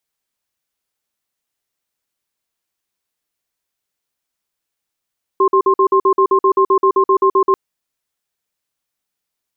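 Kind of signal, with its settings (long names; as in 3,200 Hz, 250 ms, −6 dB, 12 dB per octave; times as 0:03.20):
tone pair in a cadence 386 Hz, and 1,060 Hz, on 0.08 s, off 0.05 s, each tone −11.5 dBFS 2.14 s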